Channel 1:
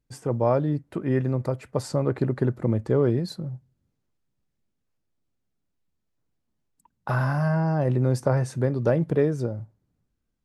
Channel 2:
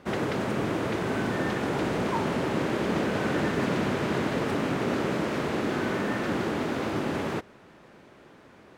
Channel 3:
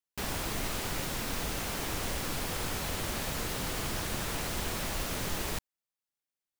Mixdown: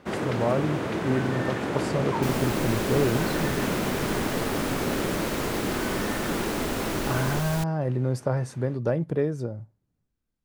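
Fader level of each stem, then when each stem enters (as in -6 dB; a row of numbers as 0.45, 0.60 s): -3.5, -0.5, +0.5 dB; 0.00, 0.00, 2.05 s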